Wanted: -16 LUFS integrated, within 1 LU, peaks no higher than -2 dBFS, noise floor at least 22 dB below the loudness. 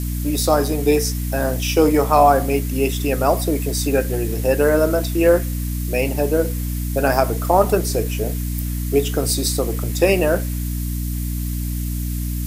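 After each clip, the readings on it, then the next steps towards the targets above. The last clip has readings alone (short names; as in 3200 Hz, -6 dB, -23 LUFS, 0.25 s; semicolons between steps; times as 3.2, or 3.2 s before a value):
hum 60 Hz; harmonics up to 300 Hz; hum level -21 dBFS; noise floor -24 dBFS; noise floor target -42 dBFS; loudness -19.5 LUFS; peak -1.5 dBFS; loudness target -16.0 LUFS
-> notches 60/120/180/240/300 Hz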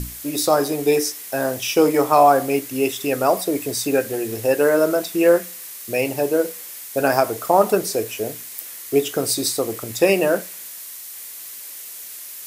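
hum none; noise floor -36 dBFS; noise floor target -42 dBFS
-> denoiser 6 dB, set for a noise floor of -36 dBFS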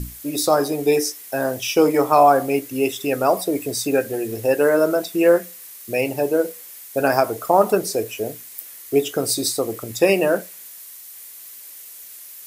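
noise floor -40 dBFS; noise floor target -42 dBFS
-> denoiser 6 dB, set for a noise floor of -40 dBFS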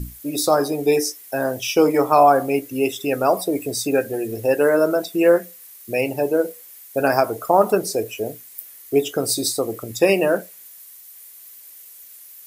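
noise floor -44 dBFS; loudness -20.0 LUFS; peak -2.0 dBFS; loudness target -16.0 LUFS
-> gain +4 dB; limiter -2 dBFS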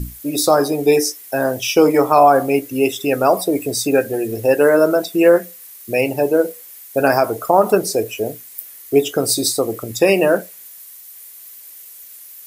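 loudness -16.5 LUFS; peak -2.0 dBFS; noise floor -40 dBFS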